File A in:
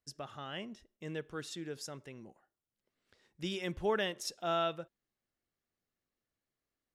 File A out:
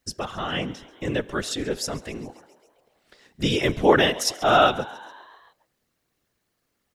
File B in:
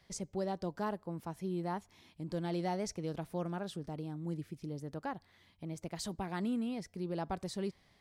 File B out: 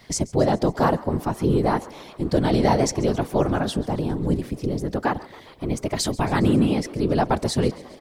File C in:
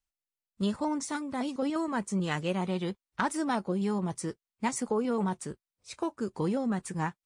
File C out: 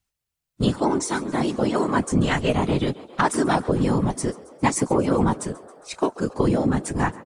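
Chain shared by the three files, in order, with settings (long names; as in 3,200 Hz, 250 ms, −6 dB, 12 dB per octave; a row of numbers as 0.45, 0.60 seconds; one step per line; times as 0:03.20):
random phases in short frames
echo with shifted repeats 136 ms, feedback 65%, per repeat +66 Hz, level −20.5 dB
loudness normalisation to −23 LKFS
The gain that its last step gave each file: +15.0, +16.5, +9.0 decibels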